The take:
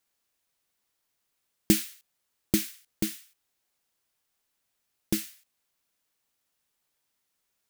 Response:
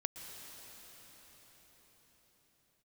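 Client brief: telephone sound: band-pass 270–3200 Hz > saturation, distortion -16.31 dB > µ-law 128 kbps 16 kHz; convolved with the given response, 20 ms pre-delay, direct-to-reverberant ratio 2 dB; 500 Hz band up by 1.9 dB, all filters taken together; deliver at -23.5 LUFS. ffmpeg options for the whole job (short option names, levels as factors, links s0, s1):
-filter_complex "[0:a]equalizer=f=500:t=o:g=5.5,asplit=2[s0][s1];[1:a]atrim=start_sample=2205,adelay=20[s2];[s1][s2]afir=irnorm=-1:irlink=0,volume=0.794[s3];[s0][s3]amix=inputs=2:normalize=0,highpass=270,lowpass=3200,asoftclip=threshold=0.168,volume=5.01" -ar 16000 -c:a pcm_mulaw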